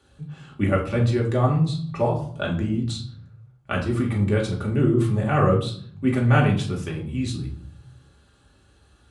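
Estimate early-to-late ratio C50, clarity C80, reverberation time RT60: 8.0 dB, 13.0 dB, 0.55 s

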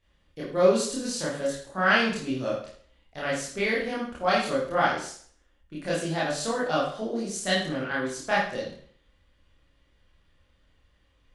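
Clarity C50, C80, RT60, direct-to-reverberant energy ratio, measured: 2.5 dB, 7.5 dB, 0.55 s, -8.0 dB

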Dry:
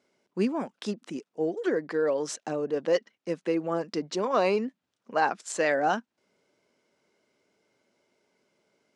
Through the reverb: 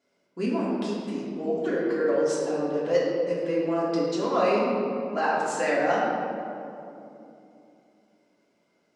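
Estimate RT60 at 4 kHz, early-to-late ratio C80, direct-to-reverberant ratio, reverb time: 1.4 s, 1.0 dB, -7.5 dB, 2.9 s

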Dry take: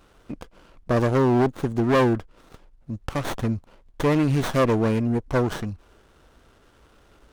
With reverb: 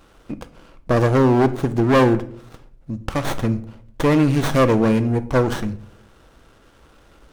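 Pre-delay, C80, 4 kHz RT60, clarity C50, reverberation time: 4 ms, 19.5 dB, 0.40 s, 15.5 dB, 0.65 s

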